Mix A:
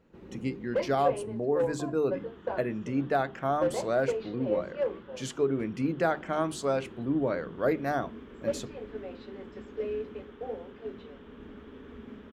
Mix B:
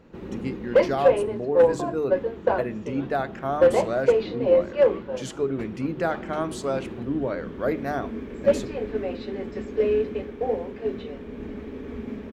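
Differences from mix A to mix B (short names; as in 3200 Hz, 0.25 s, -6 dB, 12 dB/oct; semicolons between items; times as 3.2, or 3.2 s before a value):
speech: send +10.0 dB; first sound +11.5 dB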